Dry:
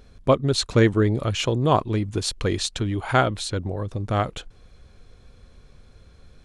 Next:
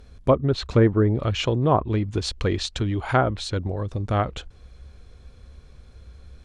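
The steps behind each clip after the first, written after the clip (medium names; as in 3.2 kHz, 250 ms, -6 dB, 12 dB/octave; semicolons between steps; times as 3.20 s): low-pass that closes with the level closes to 1.3 kHz, closed at -14.5 dBFS; peaking EQ 65 Hz +13.5 dB 0.34 oct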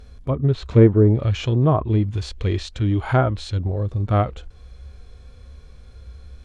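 harmonic-percussive split percussive -15 dB; trim +6 dB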